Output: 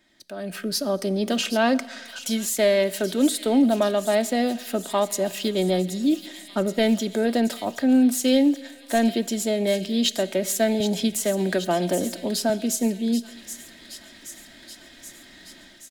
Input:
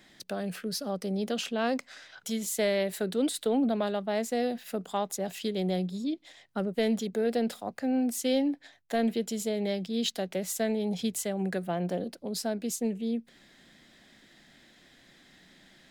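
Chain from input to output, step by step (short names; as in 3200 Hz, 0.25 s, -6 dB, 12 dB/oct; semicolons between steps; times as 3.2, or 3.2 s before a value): comb 3.2 ms, depth 47%; AGC gain up to 16 dB; thin delay 0.776 s, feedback 69%, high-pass 2900 Hz, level -10 dB; plate-style reverb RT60 1.6 s, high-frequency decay 0.8×, DRR 17.5 dB; 10.8–12.5 three-band squash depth 40%; gain -7.5 dB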